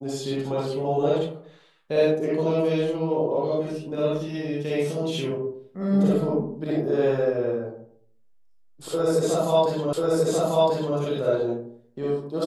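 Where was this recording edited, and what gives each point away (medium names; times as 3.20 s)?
9.93 s: repeat of the last 1.04 s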